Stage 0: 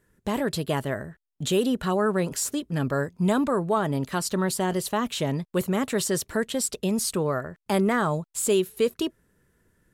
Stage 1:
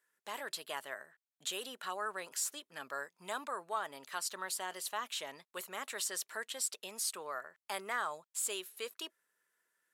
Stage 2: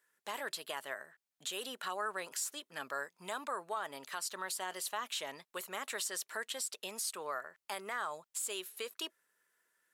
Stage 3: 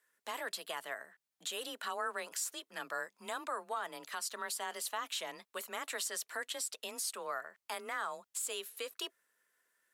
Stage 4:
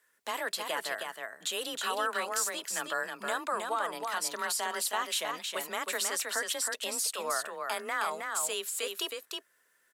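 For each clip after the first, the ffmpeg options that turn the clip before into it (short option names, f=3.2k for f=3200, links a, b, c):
-af "highpass=970,volume=-7.5dB"
-af "alimiter=level_in=6.5dB:limit=-24dB:level=0:latency=1:release=156,volume=-6.5dB,volume=3dB"
-af "afreqshift=27"
-af "aecho=1:1:317:0.596,volume=6dB"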